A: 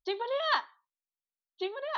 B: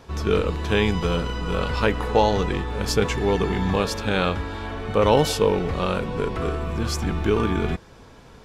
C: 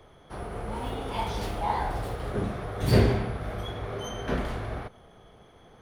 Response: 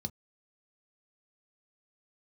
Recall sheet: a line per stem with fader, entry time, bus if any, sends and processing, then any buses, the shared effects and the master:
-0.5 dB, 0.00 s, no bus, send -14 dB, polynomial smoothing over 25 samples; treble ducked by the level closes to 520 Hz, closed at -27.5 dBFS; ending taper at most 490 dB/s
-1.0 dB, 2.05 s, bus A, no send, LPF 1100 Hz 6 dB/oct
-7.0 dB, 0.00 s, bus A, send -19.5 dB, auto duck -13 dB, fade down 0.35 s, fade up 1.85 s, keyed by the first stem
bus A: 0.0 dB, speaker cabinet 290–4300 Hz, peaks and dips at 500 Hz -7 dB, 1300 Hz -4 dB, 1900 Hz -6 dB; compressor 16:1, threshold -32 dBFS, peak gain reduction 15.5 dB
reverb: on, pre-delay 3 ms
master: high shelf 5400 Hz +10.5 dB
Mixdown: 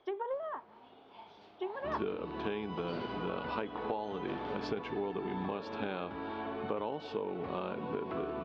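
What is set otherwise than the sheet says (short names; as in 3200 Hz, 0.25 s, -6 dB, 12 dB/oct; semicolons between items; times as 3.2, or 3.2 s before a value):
stem B: entry 2.05 s -> 1.75 s; stem C: send off; master: missing high shelf 5400 Hz +10.5 dB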